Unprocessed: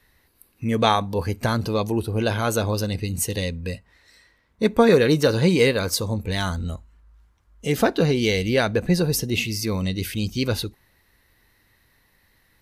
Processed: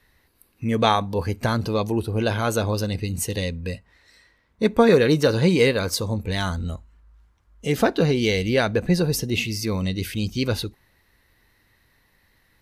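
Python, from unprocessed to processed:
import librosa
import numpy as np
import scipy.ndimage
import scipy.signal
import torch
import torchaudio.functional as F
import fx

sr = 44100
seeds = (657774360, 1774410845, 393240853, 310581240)

y = fx.high_shelf(x, sr, hz=8000.0, db=-4.5)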